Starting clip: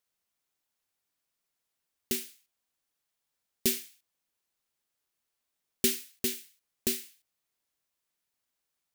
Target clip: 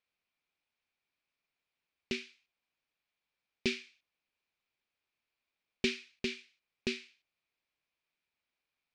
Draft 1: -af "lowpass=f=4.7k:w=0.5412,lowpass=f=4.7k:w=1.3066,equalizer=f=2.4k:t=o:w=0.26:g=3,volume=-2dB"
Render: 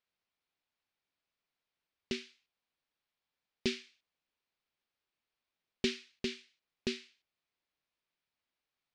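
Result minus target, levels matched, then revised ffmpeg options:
2000 Hz band -3.5 dB
-af "lowpass=f=4.7k:w=0.5412,lowpass=f=4.7k:w=1.3066,equalizer=f=2.4k:t=o:w=0.26:g=10.5,volume=-2dB"

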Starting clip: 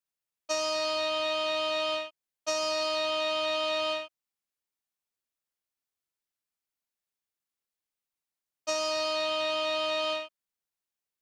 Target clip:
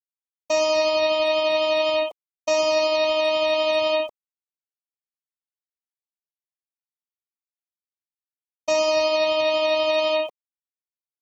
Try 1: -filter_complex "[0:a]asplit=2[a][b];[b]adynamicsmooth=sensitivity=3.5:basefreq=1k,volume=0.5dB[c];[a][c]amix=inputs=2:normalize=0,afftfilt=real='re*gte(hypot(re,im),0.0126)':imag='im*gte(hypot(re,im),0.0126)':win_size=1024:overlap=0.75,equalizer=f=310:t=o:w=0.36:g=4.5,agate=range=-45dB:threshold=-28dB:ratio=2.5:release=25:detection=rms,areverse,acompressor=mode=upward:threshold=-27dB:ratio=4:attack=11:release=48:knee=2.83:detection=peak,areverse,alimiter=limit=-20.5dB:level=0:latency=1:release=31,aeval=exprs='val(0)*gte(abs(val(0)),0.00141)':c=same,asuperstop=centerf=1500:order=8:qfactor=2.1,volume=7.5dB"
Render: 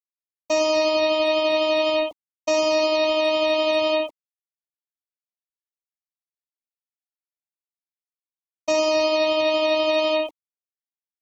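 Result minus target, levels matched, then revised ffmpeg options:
250 Hz band +6.5 dB
-filter_complex "[0:a]asplit=2[a][b];[b]adynamicsmooth=sensitivity=3.5:basefreq=1k,volume=0.5dB[c];[a][c]amix=inputs=2:normalize=0,afftfilt=real='re*gte(hypot(re,im),0.0126)':imag='im*gte(hypot(re,im),0.0126)':win_size=1024:overlap=0.75,equalizer=f=310:t=o:w=0.36:g=-2.5,agate=range=-45dB:threshold=-28dB:ratio=2.5:release=25:detection=rms,areverse,acompressor=mode=upward:threshold=-27dB:ratio=4:attack=11:release=48:knee=2.83:detection=peak,areverse,alimiter=limit=-20.5dB:level=0:latency=1:release=31,aeval=exprs='val(0)*gte(abs(val(0)),0.00141)':c=same,asuperstop=centerf=1500:order=8:qfactor=2.1,volume=7.5dB"

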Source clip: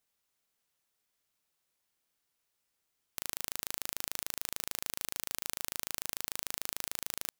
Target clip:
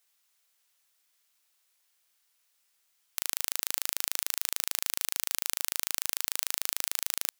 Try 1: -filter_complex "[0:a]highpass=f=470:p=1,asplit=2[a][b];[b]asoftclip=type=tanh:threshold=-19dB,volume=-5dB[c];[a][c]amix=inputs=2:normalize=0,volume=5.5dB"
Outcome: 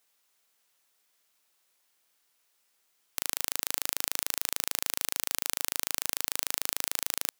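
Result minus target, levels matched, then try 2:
500 Hz band +5.0 dB
-filter_complex "[0:a]highpass=f=1.5k:p=1,asplit=2[a][b];[b]asoftclip=type=tanh:threshold=-19dB,volume=-5dB[c];[a][c]amix=inputs=2:normalize=0,volume=5.5dB"

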